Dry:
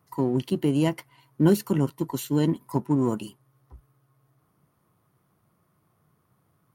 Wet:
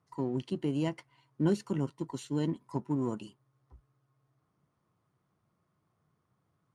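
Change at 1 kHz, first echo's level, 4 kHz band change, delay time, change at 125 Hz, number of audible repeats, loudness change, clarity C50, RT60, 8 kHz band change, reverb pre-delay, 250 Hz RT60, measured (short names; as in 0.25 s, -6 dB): -8.5 dB, none, -8.5 dB, none, -8.5 dB, none, -8.5 dB, none, none, -11.5 dB, none, none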